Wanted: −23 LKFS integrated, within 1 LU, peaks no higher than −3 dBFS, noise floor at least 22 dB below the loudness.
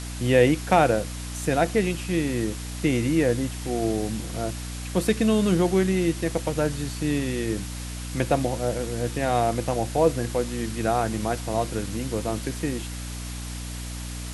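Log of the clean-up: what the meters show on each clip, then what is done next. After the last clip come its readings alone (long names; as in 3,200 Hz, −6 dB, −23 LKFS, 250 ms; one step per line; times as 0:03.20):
mains hum 60 Hz; hum harmonics up to 300 Hz; level of the hum −32 dBFS; background noise floor −34 dBFS; target noise floor −48 dBFS; integrated loudness −25.5 LKFS; sample peak −5.5 dBFS; target loudness −23.0 LKFS
→ hum removal 60 Hz, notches 5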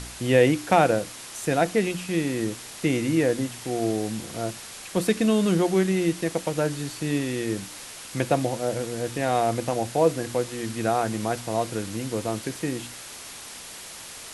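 mains hum none found; background noise floor −41 dBFS; target noise floor −48 dBFS
→ broadband denoise 7 dB, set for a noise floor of −41 dBFS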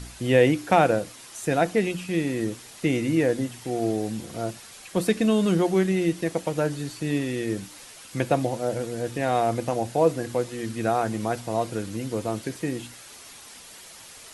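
background noise floor −46 dBFS; target noise floor −48 dBFS
→ broadband denoise 6 dB, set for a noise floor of −46 dBFS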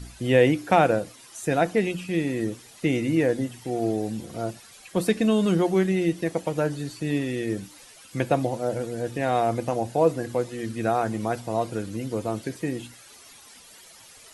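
background noise floor −49 dBFS; integrated loudness −25.5 LKFS; sample peak −6.0 dBFS; target loudness −23.0 LKFS
→ level +2.5 dB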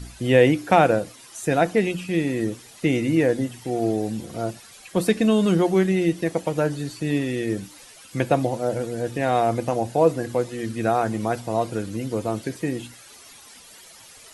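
integrated loudness −23.0 LKFS; sample peak −3.5 dBFS; background noise floor −47 dBFS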